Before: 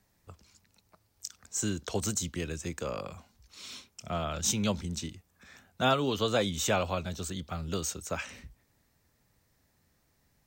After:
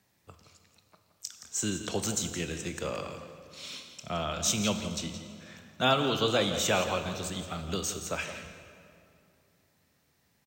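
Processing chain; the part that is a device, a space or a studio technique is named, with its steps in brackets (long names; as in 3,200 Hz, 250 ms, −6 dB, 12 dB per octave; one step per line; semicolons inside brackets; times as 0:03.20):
PA in a hall (high-pass filter 100 Hz 12 dB per octave; parametric band 3,000 Hz +4 dB 1.1 octaves; single-tap delay 170 ms −12 dB; convolution reverb RT60 2.5 s, pre-delay 16 ms, DRR 8 dB)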